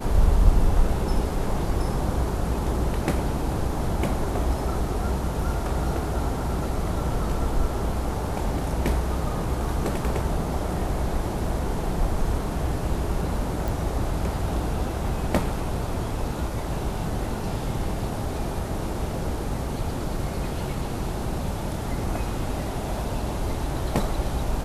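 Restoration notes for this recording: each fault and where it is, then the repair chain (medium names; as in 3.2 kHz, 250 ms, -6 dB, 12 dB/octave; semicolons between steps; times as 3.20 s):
13.68 s: pop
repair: de-click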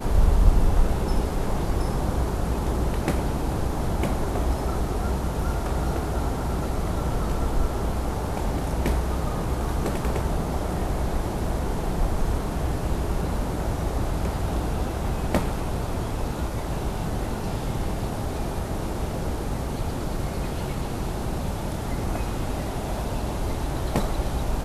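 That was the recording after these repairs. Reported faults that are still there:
nothing left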